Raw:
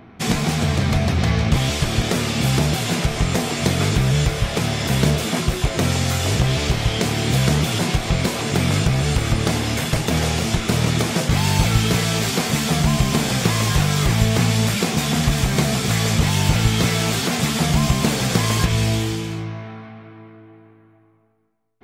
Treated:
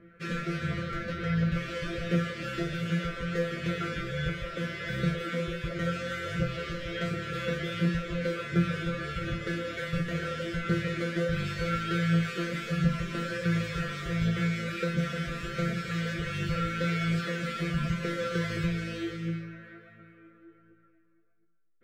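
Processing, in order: FFT filter 190 Hz 0 dB, 290 Hz -3 dB, 550 Hz +8 dB, 840 Hz -29 dB, 1.4 kHz +9 dB, 2.2 kHz 0 dB, 9.3 kHz -18 dB; phaser 1.4 Hz, delay 4.2 ms, feedback 52%; feedback comb 170 Hz, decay 0.33 s, harmonics all, mix 100%

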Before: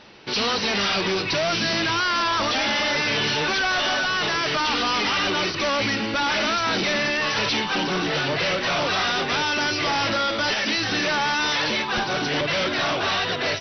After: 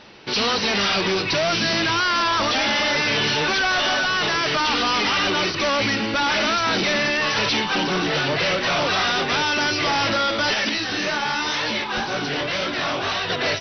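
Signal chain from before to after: 10.69–13.30 s: chorus 2 Hz, delay 17 ms, depth 7.4 ms; trim +2 dB

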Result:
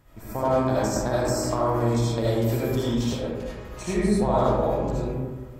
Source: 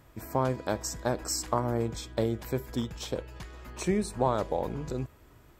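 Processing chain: bass shelf 80 Hz +6.5 dB; reverberation RT60 1.4 s, pre-delay 35 ms, DRR -9 dB; 0.96–3.13 s: three bands compressed up and down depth 70%; trim -4 dB

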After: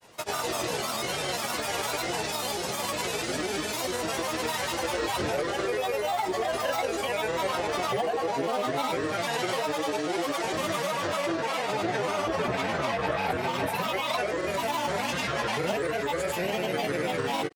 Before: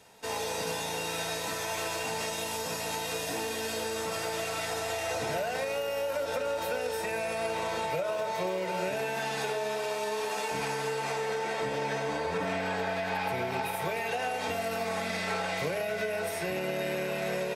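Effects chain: granulator, pitch spread up and down by 7 st; trim +4.5 dB

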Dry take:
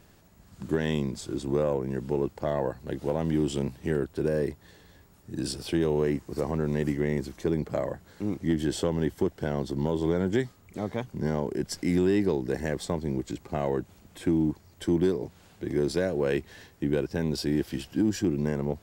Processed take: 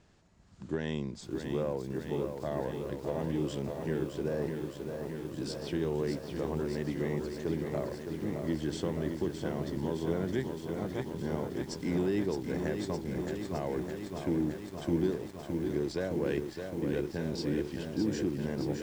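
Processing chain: low-pass 7.6 kHz 24 dB/octave; bit-crushed delay 614 ms, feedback 80%, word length 8-bit, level -6 dB; trim -7 dB

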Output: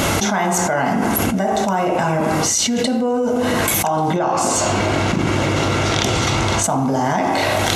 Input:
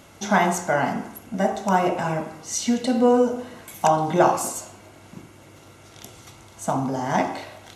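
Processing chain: 4.16–6.64 s: low-pass 5.5 kHz 12 dB/octave; level flattener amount 100%; trim -5 dB

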